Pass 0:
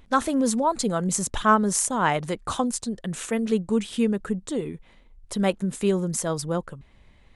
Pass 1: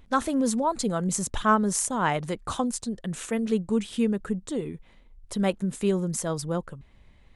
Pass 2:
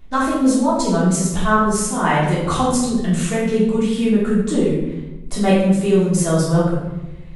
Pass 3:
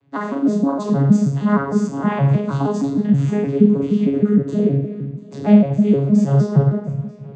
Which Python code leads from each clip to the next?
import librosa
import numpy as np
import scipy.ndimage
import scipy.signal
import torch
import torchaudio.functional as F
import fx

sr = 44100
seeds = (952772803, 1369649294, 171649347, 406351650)

y1 = fx.low_shelf(x, sr, hz=220.0, db=3.0)
y1 = y1 * librosa.db_to_amplitude(-3.0)
y2 = fx.rider(y1, sr, range_db=4, speed_s=0.5)
y2 = fx.room_shoebox(y2, sr, seeds[0], volume_m3=420.0, walls='mixed', distance_m=3.3)
y3 = fx.vocoder_arp(y2, sr, chord='bare fifth', root=49, every_ms=156)
y3 = fx.echo_feedback(y3, sr, ms=693, feedback_pct=39, wet_db=-22.0)
y3 = y3 * librosa.db_to_amplitude(2.0)